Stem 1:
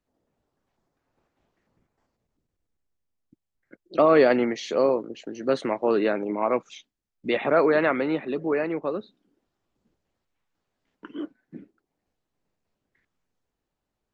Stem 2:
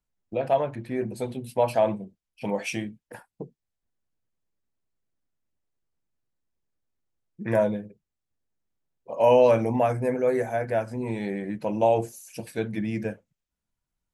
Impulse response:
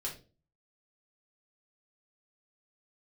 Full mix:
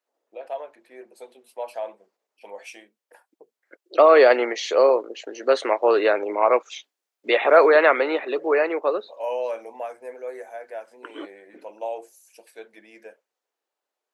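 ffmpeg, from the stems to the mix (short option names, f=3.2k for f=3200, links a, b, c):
-filter_complex "[0:a]dynaudnorm=f=390:g=17:m=11.5dB,volume=0.5dB[a];[1:a]volume=-9dB[b];[a][b]amix=inputs=2:normalize=0,highpass=f=420:w=0.5412,highpass=f=420:w=1.3066"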